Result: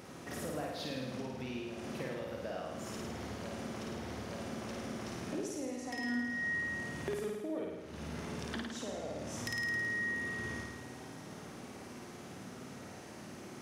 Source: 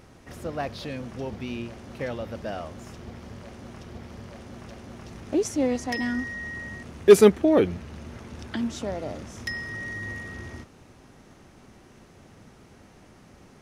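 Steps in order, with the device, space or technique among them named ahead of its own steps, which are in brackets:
high-pass filter 170 Hz 12 dB per octave
ASMR close-microphone chain (low-shelf EQ 130 Hz +5.5 dB; downward compressor 8 to 1, threshold −41 dBFS, peak gain reduction 32 dB; high-shelf EQ 6,800 Hz +4 dB)
flutter between parallel walls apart 9.2 metres, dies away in 1.2 s
level +1 dB

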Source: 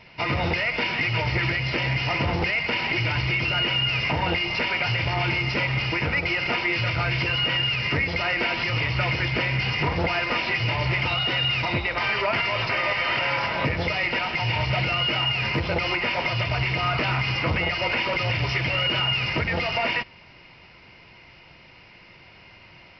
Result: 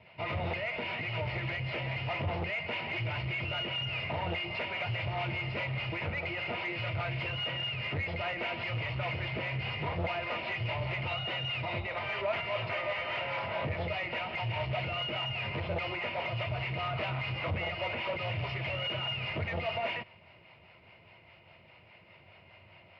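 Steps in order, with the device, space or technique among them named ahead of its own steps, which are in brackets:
guitar amplifier with harmonic tremolo (two-band tremolo in antiphase 4.9 Hz, depth 50%, crossover 470 Hz; soft clipping −24 dBFS, distortion −14 dB; loudspeaker in its box 82–3,500 Hz, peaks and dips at 94 Hz +9 dB, 280 Hz −5 dB, 630 Hz +8 dB, 1,600 Hz −4 dB)
level −5.5 dB

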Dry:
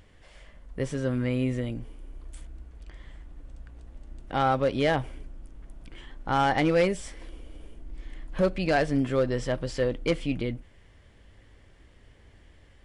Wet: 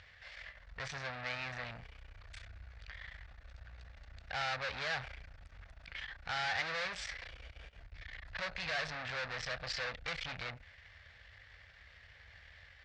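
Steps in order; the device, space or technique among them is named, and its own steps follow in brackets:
scooped metal amplifier (tube saturation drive 39 dB, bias 0.75; loudspeaker in its box 100–4,400 Hz, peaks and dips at 120 Hz −7 dB, 200 Hz −8 dB, 370 Hz −8 dB, 1,000 Hz −6 dB, 1,700 Hz +3 dB, 3,100 Hz −8 dB; guitar amp tone stack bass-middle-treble 10-0-10)
level +15.5 dB

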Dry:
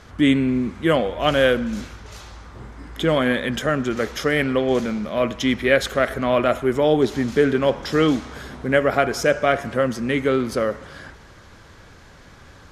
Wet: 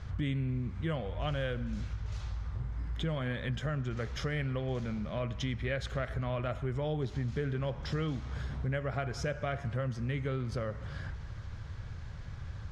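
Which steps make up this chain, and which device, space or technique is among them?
jukebox (low-pass filter 6,200 Hz 12 dB per octave; low shelf with overshoot 180 Hz +13 dB, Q 1.5; downward compressor 3 to 1, threshold −27 dBFS, peak gain reduction 12.5 dB)
level −7 dB

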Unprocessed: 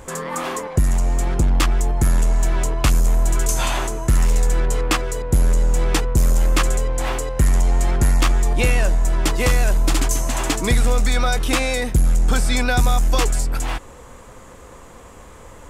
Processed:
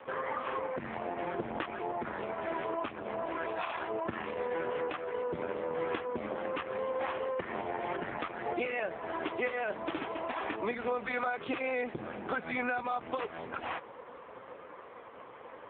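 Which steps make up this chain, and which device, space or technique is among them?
voicemail (band-pass filter 340–2,700 Hz; downward compressor 8 to 1, threshold −28 dBFS, peak gain reduction 11 dB; AMR narrowband 4.75 kbit/s 8,000 Hz)

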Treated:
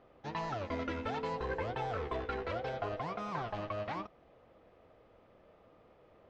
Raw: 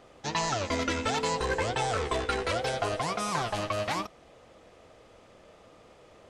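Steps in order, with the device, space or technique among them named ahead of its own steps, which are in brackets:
low-pass filter 6,000 Hz 12 dB per octave
through cloth (low-pass filter 6,400 Hz 12 dB per octave; high-shelf EQ 3,700 Hz −17.5 dB)
level −6.5 dB

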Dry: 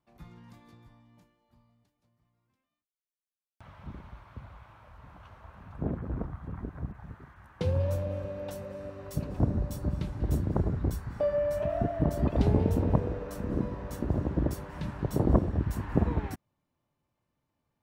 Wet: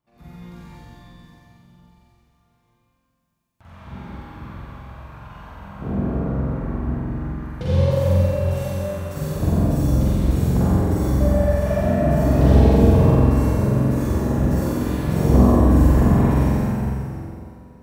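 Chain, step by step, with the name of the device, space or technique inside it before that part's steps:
tunnel (flutter between parallel walls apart 7.8 metres, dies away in 1.4 s; convolution reverb RT60 2.7 s, pre-delay 41 ms, DRR −8.5 dB)
level −1 dB

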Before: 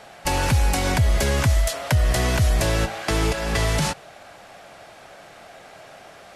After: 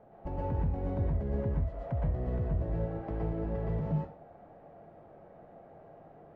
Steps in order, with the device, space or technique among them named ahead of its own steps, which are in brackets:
television next door (downward compressor 4 to 1, threshold −24 dBFS, peak gain reduction 8.5 dB; low-pass filter 510 Hz 12 dB per octave; convolution reverb RT60 0.35 s, pre-delay 112 ms, DRR −3 dB)
level −6.5 dB

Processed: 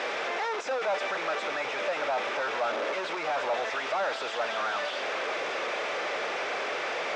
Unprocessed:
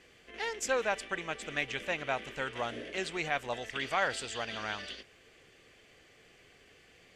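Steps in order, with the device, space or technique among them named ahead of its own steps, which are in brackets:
home computer beeper (sign of each sample alone; loudspeaker in its box 520–4,500 Hz, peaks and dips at 590 Hz +8 dB, 860 Hz +4 dB, 1,300 Hz +4 dB, 1,900 Hz −4 dB, 3,000 Hz −8 dB, 4,400 Hz −9 dB)
level +8.5 dB

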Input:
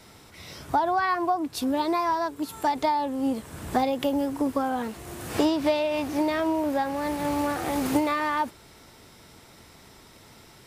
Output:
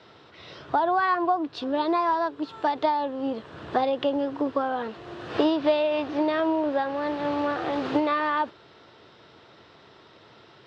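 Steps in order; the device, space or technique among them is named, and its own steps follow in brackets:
kitchen radio (loudspeaker in its box 160–3,800 Hz, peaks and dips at 180 Hz −7 dB, 250 Hz −8 dB, 840 Hz −4 dB, 2,200 Hz −8 dB)
level +3 dB

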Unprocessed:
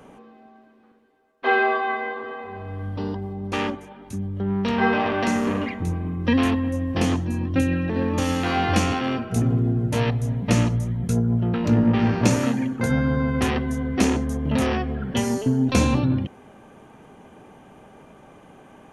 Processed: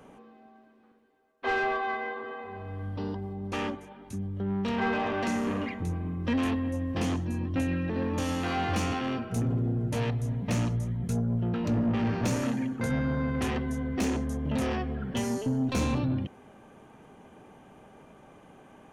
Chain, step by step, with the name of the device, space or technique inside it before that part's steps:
saturation between pre-emphasis and de-emphasis (high-shelf EQ 2,500 Hz +9 dB; soft clipping −16 dBFS, distortion −13 dB; high-shelf EQ 2,500 Hz −9 dB)
level −5 dB

